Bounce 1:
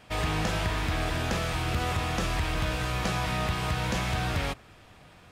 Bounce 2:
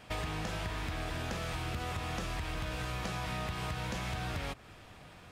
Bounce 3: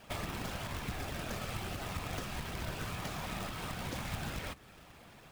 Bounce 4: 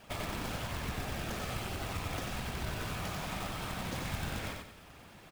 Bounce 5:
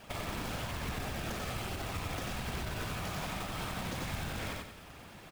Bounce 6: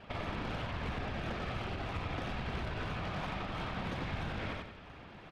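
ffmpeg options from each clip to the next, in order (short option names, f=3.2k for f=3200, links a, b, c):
-af "acompressor=threshold=-34dB:ratio=6"
-af "afftfilt=real='hypot(re,im)*cos(2*PI*random(0))':imag='hypot(re,im)*sin(2*PI*random(1))':win_size=512:overlap=0.75,acrusher=bits=2:mode=log:mix=0:aa=0.000001,volume=3dB"
-af "aecho=1:1:92|184|276|368|460:0.668|0.234|0.0819|0.0287|0.01"
-af "alimiter=level_in=6.5dB:limit=-24dB:level=0:latency=1:release=65,volume=-6.5dB,volume=3dB"
-filter_complex "[0:a]acrossover=split=4600[a][b];[b]acrusher=samples=33:mix=1:aa=0.000001:lfo=1:lforange=33:lforate=3[c];[a][c]amix=inputs=2:normalize=0,adynamicsmooth=sensitivity=5:basefreq=7.7k"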